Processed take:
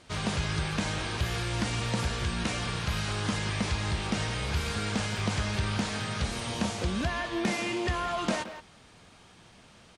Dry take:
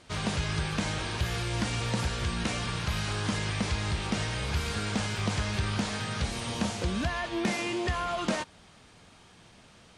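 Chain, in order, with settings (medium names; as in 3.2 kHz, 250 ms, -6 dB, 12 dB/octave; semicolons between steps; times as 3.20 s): speakerphone echo 170 ms, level -9 dB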